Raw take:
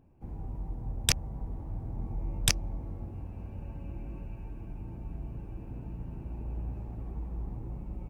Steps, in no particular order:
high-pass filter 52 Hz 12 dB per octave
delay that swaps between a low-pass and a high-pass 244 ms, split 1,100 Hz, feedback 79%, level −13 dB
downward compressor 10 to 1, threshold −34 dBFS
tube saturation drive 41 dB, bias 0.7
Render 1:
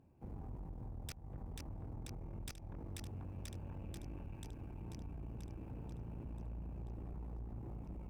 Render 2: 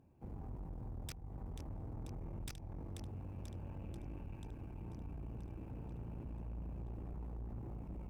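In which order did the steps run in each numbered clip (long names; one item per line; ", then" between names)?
delay that swaps between a low-pass and a high-pass, then downward compressor, then high-pass filter, then tube saturation
high-pass filter, then downward compressor, then delay that swaps between a low-pass and a high-pass, then tube saturation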